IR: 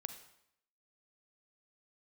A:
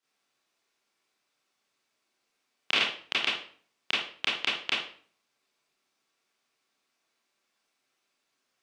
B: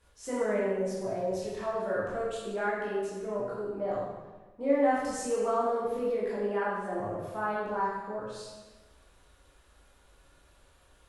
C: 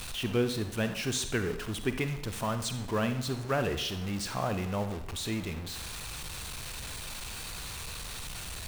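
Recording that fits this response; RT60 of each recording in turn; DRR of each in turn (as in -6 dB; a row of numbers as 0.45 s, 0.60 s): C; 0.45 s, 1.2 s, 0.75 s; -9.5 dB, -8.0 dB, 8.5 dB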